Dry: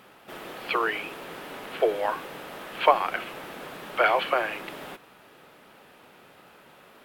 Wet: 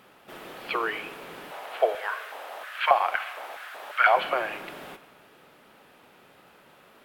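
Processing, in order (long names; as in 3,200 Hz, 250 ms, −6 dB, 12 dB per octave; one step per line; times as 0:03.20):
0:01.50–0:04.15: auto-filter high-pass square 1 Hz → 3.5 Hz 690–1,500 Hz
four-comb reverb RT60 1.6 s, combs from 29 ms, DRR 14 dB
level −2.5 dB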